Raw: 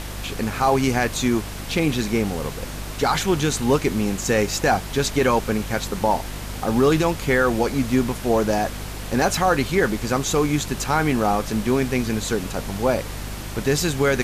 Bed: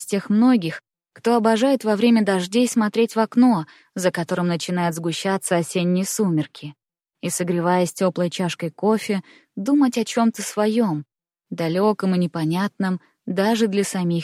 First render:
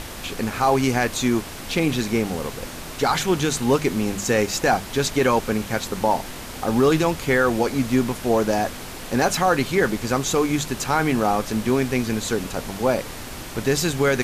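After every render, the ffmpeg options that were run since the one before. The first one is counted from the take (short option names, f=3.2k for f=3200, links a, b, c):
-af "bandreject=f=50:t=h:w=6,bandreject=f=100:t=h:w=6,bandreject=f=150:t=h:w=6,bandreject=f=200:t=h:w=6"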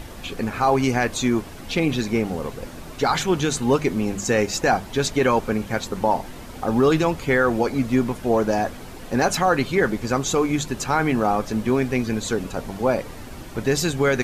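-af "afftdn=nr=9:nf=-35"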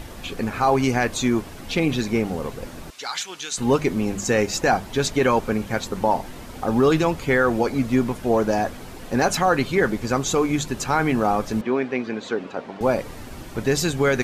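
-filter_complex "[0:a]asettb=1/sr,asplit=3[a][b][c];[a]atrim=end=2.904[d];[b]atrim=start=2.9:end=3.58,asetpts=PTS-STARTPTS,afade=t=in:d=0.004:c=qsin,afade=t=out:st=0.676:d=0.004:c=qsin,bandpass=f=5.4k:t=q:w=0.63[e];[c]atrim=start=3.576[f];[d][e]acrossfade=d=0.004:c1=hsin:c2=qsin[g];[g][f]acrossfade=d=0.004:c1=qsin:c2=hsin,asettb=1/sr,asplit=3[h][i][j];[h]atrim=end=11.614[k];[i]atrim=start=11.61:end=12.81,asetpts=PTS-STARTPTS,afade=t=in:d=0.004:c=qsin,afade=t=out:st=1.196:d=0.004:c=qsin,highpass=270,lowpass=3.1k[l];[j]atrim=start=12.806[m];[k][l]acrossfade=d=0.004:c1=hsin:c2=qsin[n];[n][m]acrossfade=d=0.004:c1=qsin:c2=hsin"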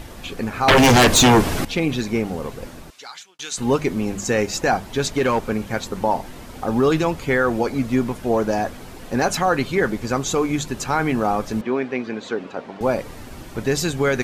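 -filter_complex "[0:a]asettb=1/sr,asplit=3[a][b][c];[a]atrim=end=0.684[d];[b]atrim=start=0.68:end=1.65,asetpts=PTS-STARTPTS,afade=t=in:d=0.004:c=qsin,afade=t=out:st=0.966:d=0.004:c=qsin,aeval=exprs='0.376*sin(PI/2*3.98*val(0)/0.376)':c=same[e];[c]atrim=start=1.646[f];[d][e]acrossfade=d=0.004:c1=hsin:c2=qsin[g];[g][f]acrossfade=d=0.004:c1=qsin:c2=hsin,asettb=1/sr,asplit=3[h][i][j];[h]atrim=end=5.084[k];[i]atrim=start=5.08:end=5.74,asetpts=PTS-STARTPTS,afade=t=in:d=0.004:c=qsin,afade=t=out:st=0.656:d=0.004:c=qsin,volume=13dB,asoftclip=hard,volume=-13dB[l];[j]atrim=start=5.736[m];[k][l]acrossfade=d=0.004:c1=hsin:c2=qsin[n];[n][m]acrossfade=d=0.004:c1=qsin:c2=hsin,asplit=2[o][p];[o]atrim=end=3.39,asetpts=PTS-STARTPTS,afade=t=out:st=2.66:d=0.73[q];[p]atrim=start=3.39,asetpts=PTS-STARTPTS,afade=t=in:d=0.004:c=hsin[r];[q][r]concat=n=2:v=0:a=1"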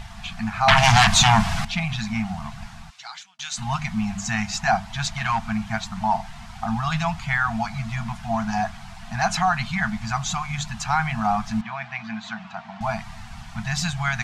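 -af "lowpass=6.7k,afftfilt=real='re*(1-between(b*sr/4096,230,650))':imag='im*(1-between(b*sr/4096,230,650))':win_size=4096:overlap=0.75"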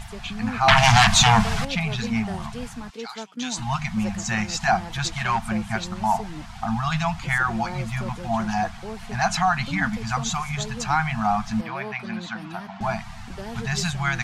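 -filter_complex "[1:a]volume=-17.5dB[a];[0:a][a]amix=inputs=2:normalize=0"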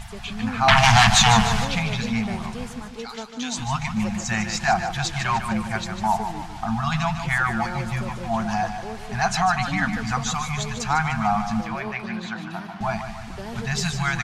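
-af "aecho=1:1:150|300|450|600|750|900:0.355|0.174|0.0852|0.0417|0.0205|0.01"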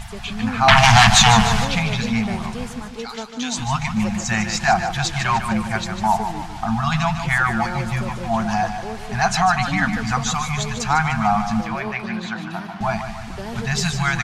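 -af "volume=3.5dB,alimiter=limit=-1dB:level=0:latency=1"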